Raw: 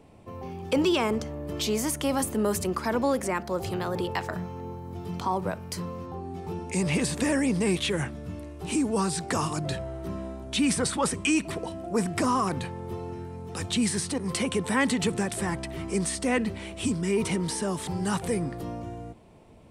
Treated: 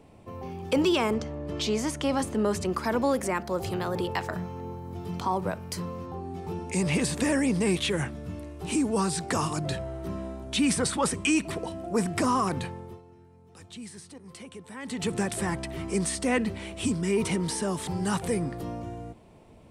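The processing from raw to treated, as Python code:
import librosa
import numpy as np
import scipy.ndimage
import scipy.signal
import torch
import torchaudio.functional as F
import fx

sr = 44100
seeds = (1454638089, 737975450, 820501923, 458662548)

y = fx.lowpass(x, sr, hz=6600.0, slope=12, at=(1.14, 2.7))
y = fx.edit(y, sr, fx.fade_down_up(start_s=12.65, length_s=2.54, db=-16.5, fade_s=0.37), tone=tone)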